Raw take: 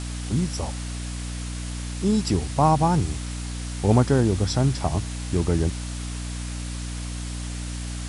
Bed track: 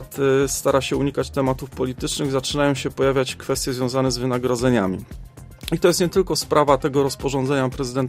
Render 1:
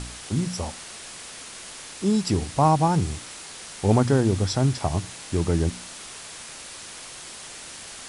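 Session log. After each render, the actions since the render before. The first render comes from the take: de-hum 60 Hz, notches 5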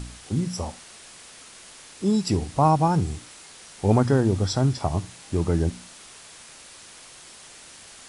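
noise print and reduce 6 dB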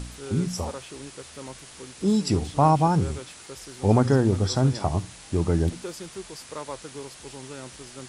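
add bed track -20 dB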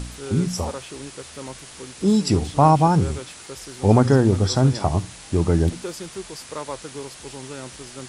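trim +4 dB

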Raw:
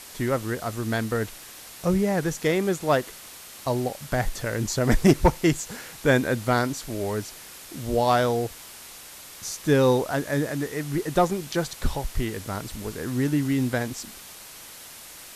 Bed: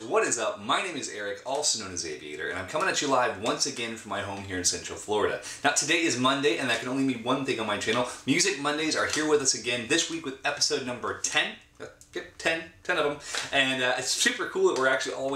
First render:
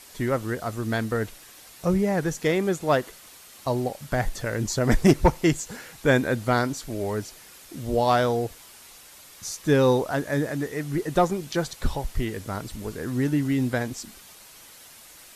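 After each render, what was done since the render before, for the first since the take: noise reduction 6 dB, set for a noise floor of -44 dBFS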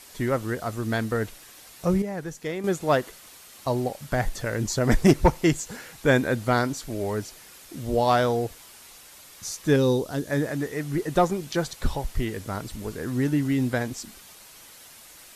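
2.02–2.64 s: gain -8 dB; 9.76–10.31 s: high-order bell 1.2 kHz -9 dB 2.4 oct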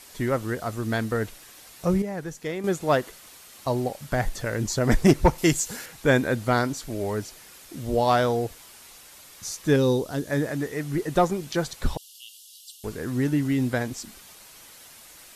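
5.38–5.86 s: treble shelf 3.9 kHz +9 dB; 11.97–12.84 s: Chebyshev high-pass 2.8 kHz, order 8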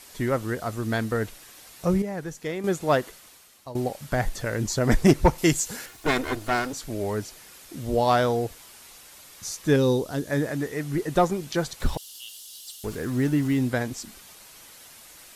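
3.04–3.75 s: fade out, to -16 dB; 5.87–6.73 s: comb filter that takes the minimum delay 2.8 ms; 11.80–13.59 s: companding laws mixed up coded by mu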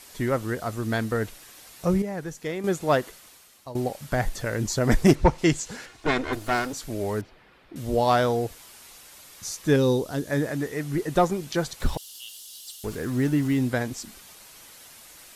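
5.15–6.33 s: distance through air 74 m; 7.21–7.76 s: distance through air 420 m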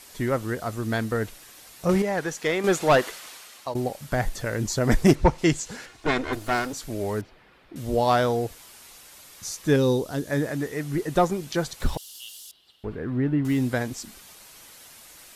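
1.89–3.74 s: overdrive pedal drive 17 dB, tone 5.1 kHz, clips at -9.5 dBFS; 12.51–13.45 s: distance through air 470 m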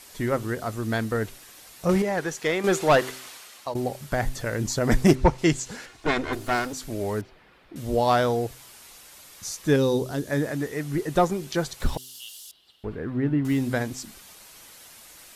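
de-hum 128.6 Hz, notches 3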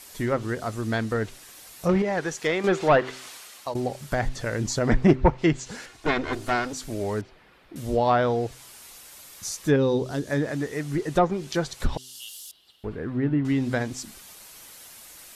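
low-pass that closes with the level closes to 2.4 kHz, closed at -16 dBFS; treble shelf 9.3 kHz +5.5 dB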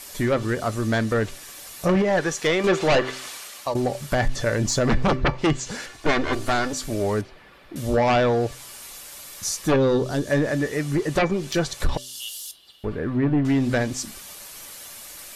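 sine folder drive 11 dB, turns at -5.5 dBFS; feedback comb 580 Hz, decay 0.2 s, harmonics all, mix 70%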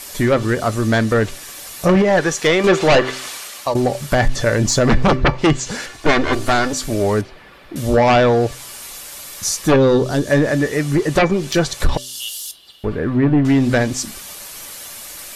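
trim +6.5 dB

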